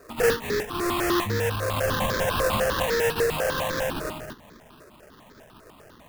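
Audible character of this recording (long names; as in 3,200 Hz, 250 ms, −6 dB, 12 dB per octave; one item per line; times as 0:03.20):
aliases and images of a low sample rate 2,200 Hz, jitter 20%
notches that jump at a steady rate 10 Hz 850–2,800 Hz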